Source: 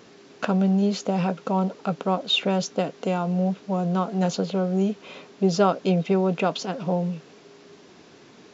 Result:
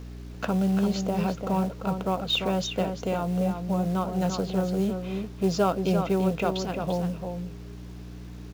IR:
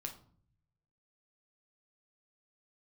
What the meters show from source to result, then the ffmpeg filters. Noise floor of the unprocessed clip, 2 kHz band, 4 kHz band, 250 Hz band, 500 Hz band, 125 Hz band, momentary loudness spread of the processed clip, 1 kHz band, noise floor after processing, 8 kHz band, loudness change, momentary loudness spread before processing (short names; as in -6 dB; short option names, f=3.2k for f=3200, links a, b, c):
-51 dBFS, -3.0 dB, -3.0 dB, -2.5 dB, -3.0 dB, -2.0 dB, 14 LU, -3.0 dB, -41 dBFS, n/a, -3.0 dB, 7 LU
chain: -filter_complex "[0:a]aeval=exprs='val(0)+0.0178*(sin(2*PI*60*n/s)+sin(2*PI*2*60*n/s)/2+sin(2*PI*3*60*n/s)/3+sin(2*PI*4*60*n/s)/4+sin(2*PI*5*60*n/s)/5)':c=same,acontrast=27,acrusher=bits=6:mode=log:mix=0:aa=0.000001,asplit=2[a][b];[b]adelay=344,volume=-6dB,highshelf=f=4k:g=-7.74[c];[a][c]amix=inputs=2:normalize=0,volume=-8.5dB"